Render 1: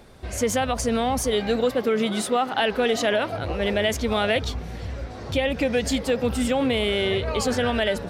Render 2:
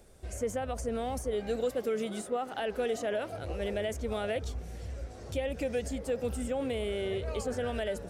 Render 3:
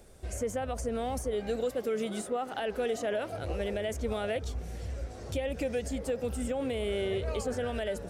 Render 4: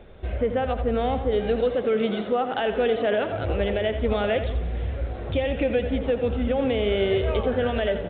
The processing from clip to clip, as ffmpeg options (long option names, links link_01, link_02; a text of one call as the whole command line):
ffmpeg -i in.wav -filter_complex "[0:a]equalizer=frequency=125:width_type=o:width=1:gain=-6,equalizer=frequency=250:width_type=o:width=1:gain=-6,equalizer=frequency=1000:width_type=o:width=1:gain=-9,equalizer=frequency=2000:width_type=o:width=1:gain=-5,equalizer=frequency=4000:width_type=o:width=1:gain=-8,equalizer=frequency=8000:width_type=o:width=1:gain=6,acrossover=split=2100[link_01][link_02];[link_02]acompressor=threshold=-40dB:ratio=6[link_03];[link_01][link_03]amix=inputs=2:normalize=0,volume=-5dB" out.wav
ffmpeg -i in.wav -af "alimiter=level_in=1dB:limit=-24dB:level=0:latency=1:release=269,volume=-1dB,volume=2.5dB" out.wav
ffmpeg -i in.wav -af "aecho=1:1:86|172|258|344|430:0.316|0.145|0.0669|0.0308|0.0142,aresample=8000,aresample=44100,volume=8.5dB" out.wav